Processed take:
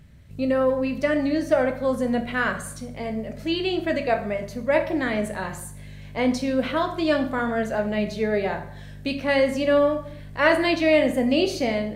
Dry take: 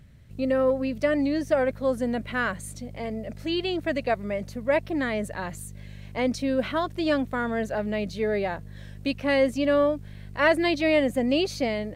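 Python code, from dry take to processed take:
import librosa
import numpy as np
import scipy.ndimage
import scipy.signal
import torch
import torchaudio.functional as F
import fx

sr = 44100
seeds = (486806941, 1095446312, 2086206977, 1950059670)

y = fx.rev_plate(x, sr, seeds[0], rt60_s=0.64, hf_ratio=0.75, predelay_ms=0, drr_db=4.5)
y = F.gain(torch.from_numpy(y), 1.5).numpy()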